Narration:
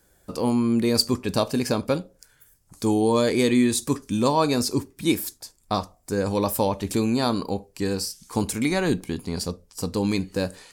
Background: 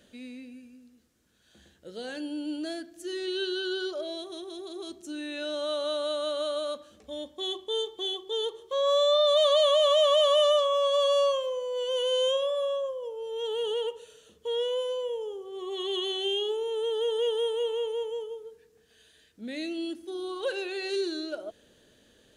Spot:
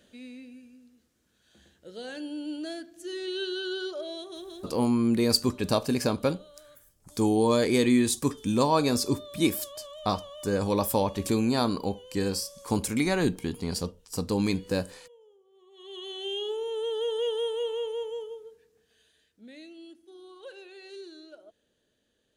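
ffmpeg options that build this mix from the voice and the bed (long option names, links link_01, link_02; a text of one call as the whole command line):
ffmpeg -i stem1.wav -i stem2.wav -filter_complex "[0:a]adelay=4350,volume=-2.5dB[link_01];[1:a]volume=19.5dB,afade=type=out:start_time=4.46:duration=0.46:silence=0.0891251,afade=type=in:start_time=15.73:duration=0.86:silence=0.0891251,afade=type=out:start_time=18.23:duration=1.47:silence=0.237137[link_02];[link_01][link_02]amix=inputs=2:normalize=0" out.wav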